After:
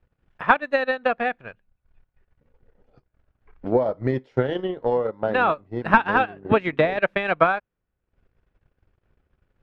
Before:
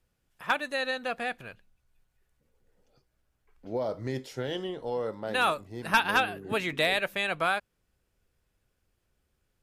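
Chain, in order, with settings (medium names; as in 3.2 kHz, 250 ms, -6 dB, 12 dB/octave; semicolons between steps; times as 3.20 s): de-esser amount 90%; low-pass 2 kHz 12 dB/octave; transient shaper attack +8 dB, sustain -12 dB; trim +7.5 dB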